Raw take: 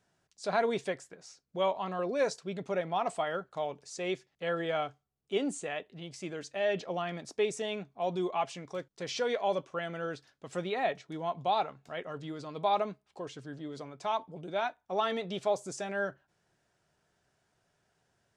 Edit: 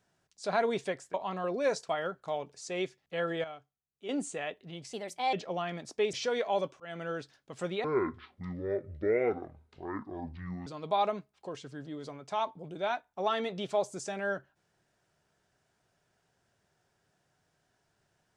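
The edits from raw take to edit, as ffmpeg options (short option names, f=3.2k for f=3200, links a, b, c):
-filter_complex "[0:a]asplit=11[a][b][c][d][e][f][g][h][i][j][k];[a]atrim=end=1.142[l];[b]atrim=start=1.688:end=2.442[m];[c]atrim=start=3.178:end=4.732[n];[d]atrim=start=4.728:end=5.382,asetpts=PTS-STARTPTS,volume=-12dB[o];[e]atrim=start=5.378:end=6.224[p];[f]atrim=start=6.22:end=6.73,asetpts=PTS-STARTPTS,asetrate=56007,aresample=44100,atrim=end_sample=17709,asetpts=PTS-STARTPTS[q];[g]atrim=start=6.726:end=7.532[r];[h]atrim=start=9.068:end=9.74,asetpts=PTS-STARTPTS,afade=t=out:st=0.668:d=0.004:c=hsin[s];[i]atrim=start=9.74:end=10.784,asetpts=PTS-STARTPTS,afade=t=in:d=0.26:c=qsin[t];[j]atrim=start=10.78:end=12.39,asetpts=PTS-STARTPTS,asetrate=25137,aresample=44100,atrim=end_sample=124563,asetpts=PTS-STARTPTS[u];[k]atrim=start=12.386[v];[l][m]acrossfade=d=0.004:c1=hsin:c2=hsin[w];[w][n]acrossfade=d=0.004:c1=hsin:c2=hsin[x];[x][o]acrossfade=d=0.004:c1=hsin:c2=hsin[y];[y][p]acrossfade=d=0.004:c1=hsin:c2=hsin[z];[z][q]acrossfade=d=0.004:c1=hsin:c2=hsin[aa];[aa][r]acrossfade=d=0.004:c1=hsin:c2=hsin[ab];[s][t]concat=n=2:v=0:a=1[ac];[ab][ac]acrossfade=d=0.004:c1=hsin:c2=hsin[ad];[ad][u]acrossfade=d=0.004:c1=hsin:c2=hsin[ae];[ae][v]acrossfade=d=0.004:c1=hsin:c2=hsin"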